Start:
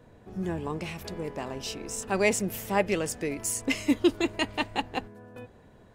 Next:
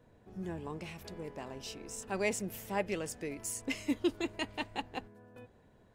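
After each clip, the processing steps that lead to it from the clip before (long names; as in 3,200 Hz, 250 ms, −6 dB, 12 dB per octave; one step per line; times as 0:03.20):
notch filter 1,200 Hz, Q 28
level −8.5 dB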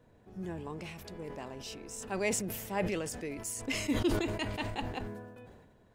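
level that may fall only so fast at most 43 dB per second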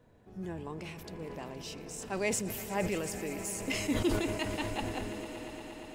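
echo that builds up and dies away 117 ms, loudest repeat 5, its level −17 dB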